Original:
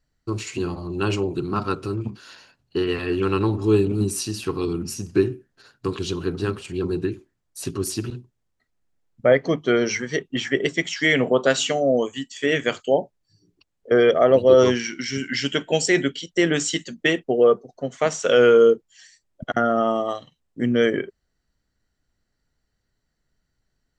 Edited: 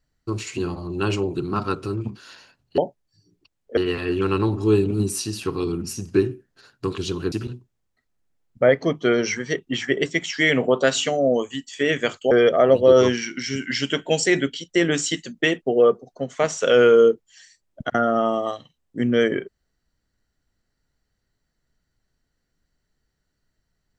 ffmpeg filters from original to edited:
-filter_complex "[0:a]asplit=5[a][b][c][d][e];[a]atrim=end=2.782[f];[b]atrim=start=12.938:end=13.932[g];[c]atrim=start=2.778:end=6.332[h];[d]atrim=start=7.948:end=12.942[i];[e]atrim=start=13.928[j];[f][g]acrossfade=d=0.004:c1=hsin:c2=hsin[k];[k][h]acrossfade=d=0.004:c1=hsin:c2=hsin[l];[l][i]acrossfade=d=0.004:c1=hsin:c2=hsin[m];[m][j]acrossfade=d=0.004:c1=hsin:c2=hsin"

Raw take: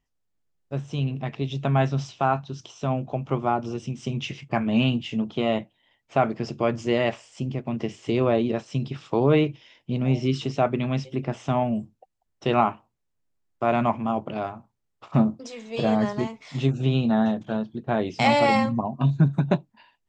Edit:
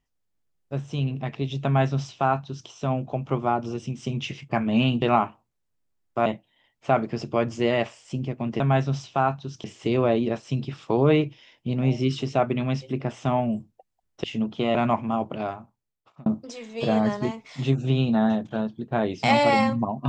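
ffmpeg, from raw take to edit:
-filter_complex "[0:a]asplit=8[a][b][c][d][e][f][g][h];[a]atrim=end=5.022[i];[b]atrim=start=12.468:end=13.712[j];[c]atrim=start=5.528:end=7.872[k];[d]atrim=start=1.648:end=2.692[l];[e]atrim=start=7.868:end=12.472[m];[f]atrim=start=5.018:end=5.532[n];[g]atrim=start=13.708:end=15.22,asetpts=PTS-STARTPTS,afade=t=out:st=0.692:d=0.82[o];[h]atrim=start=15.22,asetpts=PTS-STARTPTS,afade=t=in:d=0.004:c=hsin[p];[i][j]acrossfade=d=0.004:c1=hsin:c2=hsin[q];[q][k]acrossfade=d=0.004:c1=hsin:c2=hsin[r];[r][l]acrossfade=d=0.004:c1=hsin:c2=hsin[s];[s][m]acrossfade=d=0.004:c1=hsin:c2=hsin[t];[t][n]acrossfade=d=0.004:c1=hsin:c2=hsin[u];[o][p]concat=n=2:v=0:a=1[v];[u][v]acrossfade=d=0.004:c1=hsin:c2=hsin"

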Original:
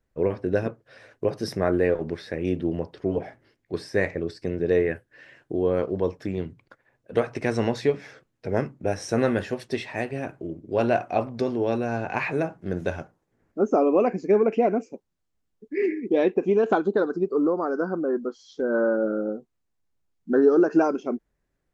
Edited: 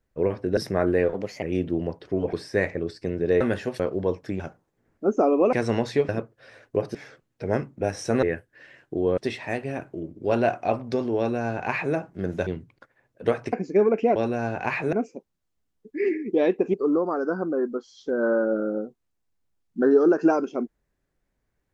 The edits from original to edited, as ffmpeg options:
-filter_complex "[0:a]asplit=18[a][b][c][d][e][f][g][h][i][j][k][l][m][n][o][p][q][r];[a]atrim=end=0.572[s];[b]atrim=start=1.428:end=2.004[t];[c]atrim=start=2:end=2.35,asetpts=PTS-STARTPTS,asetrate=53802,aresample=44100[u];[d]atrim=start=2.346:end=3.252[v];[e]atrim=start=3.728:end=4.812[w];[f]atrim=start=9.258:end=9.652[x];[g]atrim=start=5.758:end=6.362[y];[h]atrim=start=12.938:end=14.072[z];[i]atrim=start=7.418:end=7.982[aa];[j]atrim=start=0.568:end=1.432[ab];[k]atrim=start=7.978:end=9.262[ac];[l]atrim=start=4.808:end=5.762[ad];[m]atrim=start=9.648:end=12.942[ae];[n]atrim=start=6.358:end=7.422[af];[o]atrim=start=14.068:end=14.702[ag];[p]atrim=start=11.648:end=12.422[ah];[q]atrim=start=14.698:end=16.512[ai];[r]atrim=start=17.248[aj];[s][t]acrossfade=d=0.004:c1=hsin:c2=hsin[ak];[ak][u]acrossfade=d=0.004:c1=hsin:c2=hsin[al];[al][v]acrossfade=d=0.004:c1=hsin:c2=hsin[am];[am][w]acrossfade=d=0.004:c1=hsin:c2=hsin[an];[an][x]acrossfade=d=0.004:c1=hsin:c2=hsin[ao];[ao][y]acrossfade=d=0.004:c1=hsin:c2=hsin[ap];[ap][z]acrossfade=d=0.004:c1=hsin:c2=hsin[aq];[aq][aa]acrossfade=d=0.004:c1=hsin:c2=hsin[ar];[ar][ab]acrossfade=d=0.004:c1=hsin:c2=hsin[as];[as][ac]acrossfade=d=0.004:c1=hsin:c2=hsin[at];[at][ad]acrossfade=d=0.004:c1=hsin:c2=hsin[au];[au][ae]acrossfade=d=0.004:c1=hsin:c2=hsin[av];[av][af]acrossfade=d=0.004:c1=hsin:c2=hsin[aw];[aw][ag]acrossfade=d=0.004:c1=hsin:c2=hsin[ax];[ax][ah]acrossfade=d=0.004:c1=hsin:c2=hsin[ay];[ay][ai]acrossfade=d=0.004:c1=hsin:c2=hsin[az];[az][aj]acrossfade=d=0.004:c1=hsin:c2=hsin"

